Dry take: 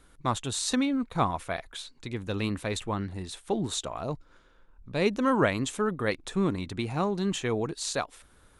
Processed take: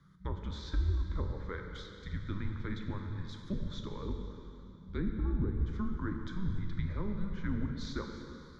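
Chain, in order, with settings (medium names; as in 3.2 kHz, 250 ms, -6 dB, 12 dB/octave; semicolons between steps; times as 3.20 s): low-pass that closes with the level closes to 470 Hz, closed at -21 dBFS; treble shelf 3.8 kHz -9 dB; in parallel at -2 dB: peak limiter -24.5 dBFS, peak gain reduction 10 dB; on the sum: frequency shift -200 Hz; static phaser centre 2.7 kHz, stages 6; plate-style reverb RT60 3 s, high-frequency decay 0.9×, DRR 3 dB; trim -8.5 dB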